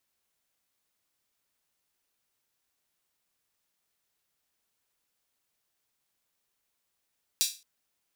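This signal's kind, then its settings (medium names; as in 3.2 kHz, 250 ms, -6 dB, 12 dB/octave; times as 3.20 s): open hi-hat length 0.22 s, high-pass 4.1 kHz, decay 0.31 s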